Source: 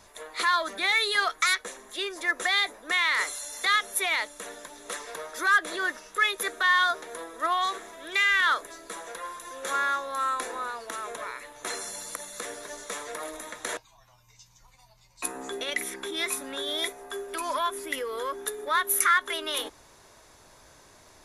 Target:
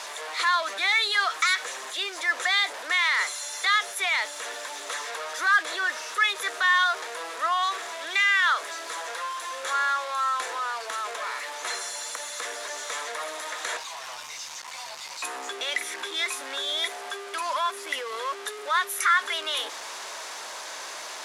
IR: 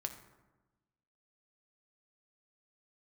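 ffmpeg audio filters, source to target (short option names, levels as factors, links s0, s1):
-af "aeval=exprs='val(0)+0.5*0.0335*sgn(val(0))':c=same,highpass=700,lowpass=7400"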